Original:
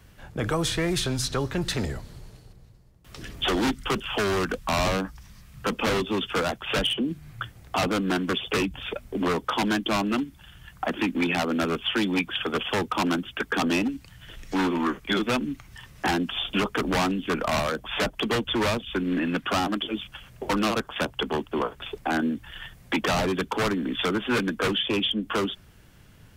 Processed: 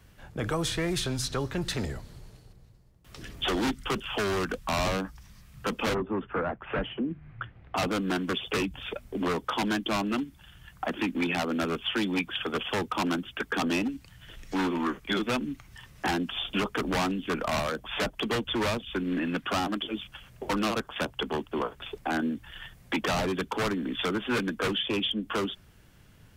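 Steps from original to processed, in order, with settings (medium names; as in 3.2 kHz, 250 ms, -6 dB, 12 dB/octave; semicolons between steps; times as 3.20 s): 5.93–7.76 s: low-pass 1.5 kHz -> 3 kHz 24 dB/octave; trim -3.5 dB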